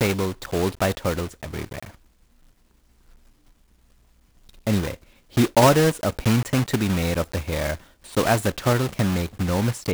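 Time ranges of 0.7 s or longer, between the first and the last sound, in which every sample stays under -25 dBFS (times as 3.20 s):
1.83–4.67 s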